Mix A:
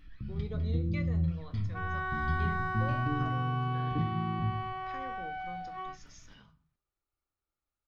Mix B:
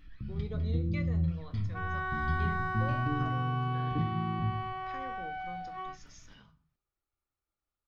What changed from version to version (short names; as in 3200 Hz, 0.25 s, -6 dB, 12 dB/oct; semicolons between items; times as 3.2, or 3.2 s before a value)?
none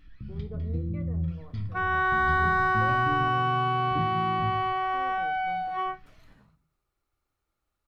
speech: add LPF 1000 Hz 12 dB/oct; second sound +10.5 dB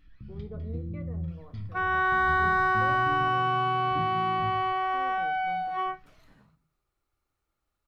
first sound -4.5 dB